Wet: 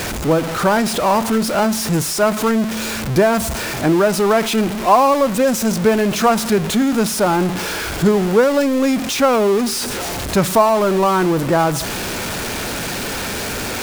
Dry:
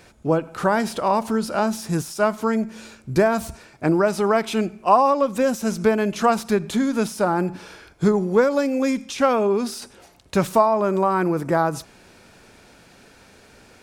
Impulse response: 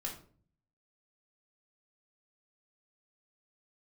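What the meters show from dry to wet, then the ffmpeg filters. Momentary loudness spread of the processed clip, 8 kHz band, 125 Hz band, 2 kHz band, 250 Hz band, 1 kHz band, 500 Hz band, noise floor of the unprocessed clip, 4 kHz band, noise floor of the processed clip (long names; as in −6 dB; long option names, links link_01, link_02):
8 LU, +12.5 dB, +6.0 dB, +7.0 dB, +5.5 dB, +4.0 dB, +4.5 dB, −51 dBFS, +12.0 dB, −24 dBFS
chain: -af "aeval=exprs='val(0)+0.5*0.0944*sgn(val(0))':channel_layout=same,volume=2dB"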